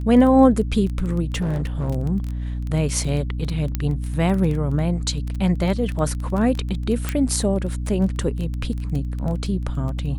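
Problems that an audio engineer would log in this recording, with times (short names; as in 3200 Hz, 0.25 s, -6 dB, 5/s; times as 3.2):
crackle 14/s -25 dBFS
hum 60 Hz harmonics 5 -26 dBFS
1.32–1.9 clipped -19 dBFS
3.75 pop -9 dBFS
7.09 pop -9 dBFS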